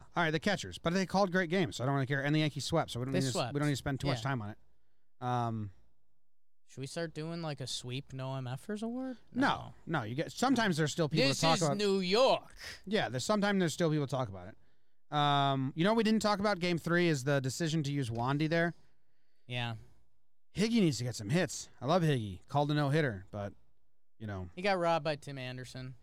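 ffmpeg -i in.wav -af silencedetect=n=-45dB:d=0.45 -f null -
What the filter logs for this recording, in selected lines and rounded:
silence_start: 4.53
silence_end: 5.22 | silence_duration: 0.68
silence_start: 5.69
silence_end: 6.73 | silence_duration: 1.04
silence_start: 14.53
silence_end: 15.12 | silence_duration: 0.59
silence_start: 18.72
silence_end: 19.49 | silence_duration: 0.77
silence_start: 19.83
silence_end: 20.55 | silence_duration: 0.72
silence_start: 23.51
silence_end: 24.21 | silence_duration: 0.70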